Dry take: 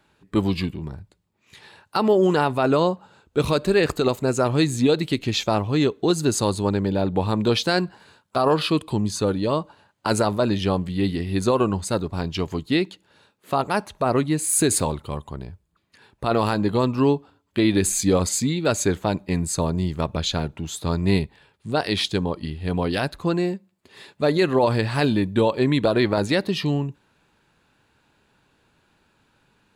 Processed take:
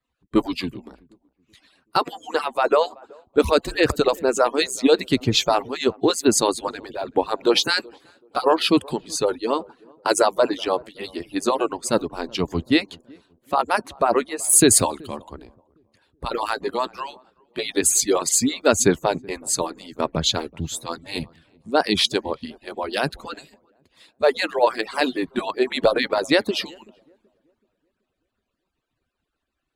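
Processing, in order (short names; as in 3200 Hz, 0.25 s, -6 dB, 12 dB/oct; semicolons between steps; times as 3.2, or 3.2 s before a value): median-filter separation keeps percussive; on a send: darkening echo 0.379 s, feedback 57%, low-pass 860 Hz, level -21 dB; on the sum: three-band expander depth 40%; gain +3.5 dB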